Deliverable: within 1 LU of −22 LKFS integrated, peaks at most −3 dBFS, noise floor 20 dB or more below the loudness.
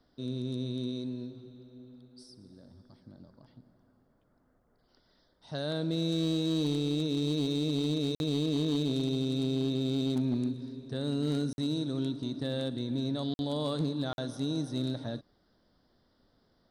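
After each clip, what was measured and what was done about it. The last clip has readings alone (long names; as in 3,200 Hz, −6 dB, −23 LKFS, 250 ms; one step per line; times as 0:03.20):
share of clipped samples 1.1%; peaks flattened at −23.5 dBFS; number of dropouts 4; longest dropout 51 ms; integrated loudness −32.0 LKFS; sample peak −23.5 dBFS; target loudness −22.0 LKFS
→ clipped peaks rebuilt −23.5 dBFS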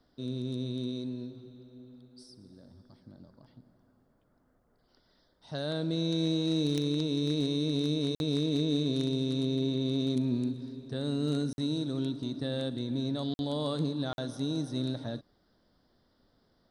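share of clipped samples 0.0%; number of dropouts 4; longest dropout 51 ms
→ repair the gap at 0:08.15/0:11.53/0:13.34/0:14.13, 51 ms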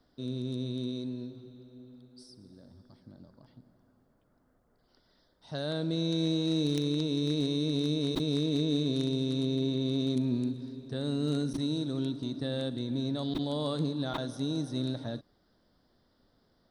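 number of dropouts 0; integrated loudness −31.5 LKFS; sample peak −14.5 dBFS; target loudness −22.0 LKFS
→ level +9.5 dB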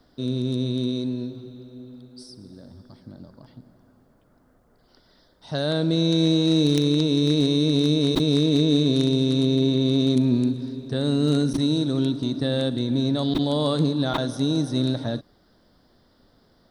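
integrated loudness −22.0 LKFS; sample peak −5.0 dBFS; background noise floor −61 dBFS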